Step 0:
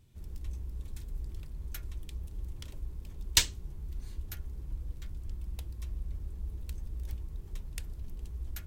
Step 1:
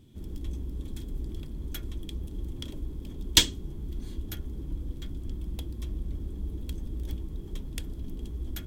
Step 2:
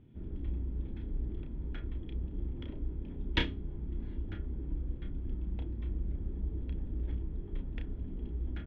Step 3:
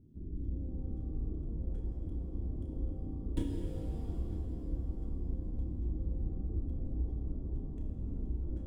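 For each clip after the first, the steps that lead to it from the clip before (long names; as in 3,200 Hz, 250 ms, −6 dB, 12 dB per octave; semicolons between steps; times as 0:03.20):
hollow resonant body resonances 270/3,300 Hz, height 15 dB, ringing for 20 ms; level +2.5 dB
low-pass filter 2,400 Hz 24 dB per octave; notch filter 1,100 Hz, Q 13; double-tracking delay 32 ms −7 dB; level −3 dB
running median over 9 samples; drawn EQ curve 320 Hz 0 dB, 2,100 Hz −27 dB, 5,000 Hz −10 dB; reverb with rising layers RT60 3.6 s, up +7 semitones, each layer −8 dB, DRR 1 dB; level −1.5 dB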